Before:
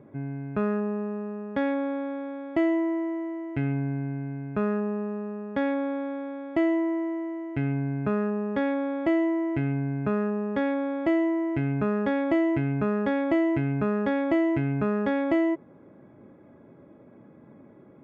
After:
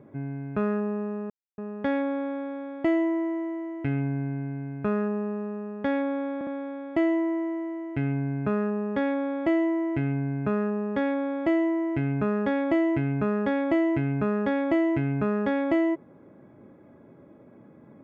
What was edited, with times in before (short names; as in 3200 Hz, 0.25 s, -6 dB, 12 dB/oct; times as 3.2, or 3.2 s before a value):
1.3 insert silence 0.28 s
6.07 stutter 0.06 s, 3 plays